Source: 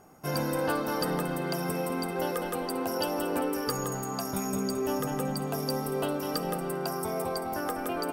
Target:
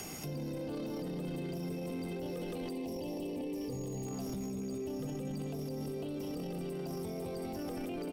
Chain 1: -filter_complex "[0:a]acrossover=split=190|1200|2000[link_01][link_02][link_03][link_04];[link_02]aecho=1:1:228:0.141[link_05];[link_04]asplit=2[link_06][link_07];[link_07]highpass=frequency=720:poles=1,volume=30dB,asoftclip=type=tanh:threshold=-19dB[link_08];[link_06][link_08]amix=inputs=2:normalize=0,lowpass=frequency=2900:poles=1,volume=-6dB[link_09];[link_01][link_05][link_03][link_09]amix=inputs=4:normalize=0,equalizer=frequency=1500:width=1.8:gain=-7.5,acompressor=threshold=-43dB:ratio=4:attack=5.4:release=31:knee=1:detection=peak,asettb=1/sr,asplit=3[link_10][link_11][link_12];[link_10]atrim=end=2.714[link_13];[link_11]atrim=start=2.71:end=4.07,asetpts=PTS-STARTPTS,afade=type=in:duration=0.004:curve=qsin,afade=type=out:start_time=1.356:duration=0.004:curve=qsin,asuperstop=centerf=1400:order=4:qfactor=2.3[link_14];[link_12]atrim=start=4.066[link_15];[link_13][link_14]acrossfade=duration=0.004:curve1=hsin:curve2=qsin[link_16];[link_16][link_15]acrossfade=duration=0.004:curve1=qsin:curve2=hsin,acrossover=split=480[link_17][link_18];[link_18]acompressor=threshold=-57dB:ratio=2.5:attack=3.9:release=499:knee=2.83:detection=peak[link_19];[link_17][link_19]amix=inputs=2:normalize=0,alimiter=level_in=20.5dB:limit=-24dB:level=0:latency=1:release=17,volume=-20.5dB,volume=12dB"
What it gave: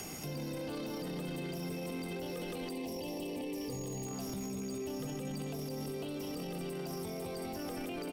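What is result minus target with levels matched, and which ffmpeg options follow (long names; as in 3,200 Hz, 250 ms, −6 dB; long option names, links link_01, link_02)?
downward compressor: peak gain reduction +14.5 dB
-filter_complex "[0:a]acrossover=split=190|1200|2000[link_01][link_02][link_03][link_04];[link_02]aecho=1:1:228:0.141[link_05];[link_04]asplit=2[link_06][link_07];[link_07]highpass=frequency=720:poles=1,volume=30dB,asoftclip=type=tanh:threshold=-19dB[link_08];[link_06][link_08]amix=inputs=2:normalize=0,lowpass=frequency=2900:poles=1,volume=-6dB[link_09];[link_01][link_05][link_03][link_09]amix=inputs=4:normalize=0,equalizer=frequency=1500:width=1.8:gain=-7.5,asettb=1/sr,asplit=3[link_10][link_11][link_12];[link_10]atrim=end=2.714[link_13];[link_11]atrim=start=2.71:end=4.07,asetpts=PTS-STARTPTS,afade=type=in:duration=0.004:curve=qsin,afade=type=out:start_time=1.356:duration=0.004:curve=qsin,asuperstop=centerf=1400:order=4:qfactor=2.3[link_14];[link_12]atrim=start=4.066[link_15];[link_13][link_14]acrossfade=duration=0.004:curve1=hsin:curve2=qsin[link_16];[link_16][link_15]acrossfade=duration=0.004:curve1=qsin:curve2=hsin,acrossover=split=480[link_17][link_18];[link_18]acompressor=threshold=-57dB:ratio=2.5:attack=3.9:release=499:knee=2.83:detection=peak[link_19];[link_17][link_19]amix=inputs=2:normalize=0,alimiter=level_in=20.5dB:limit=-24dB:level=0:latency=1:release=17,volume=-20.5dB,volume=12dB"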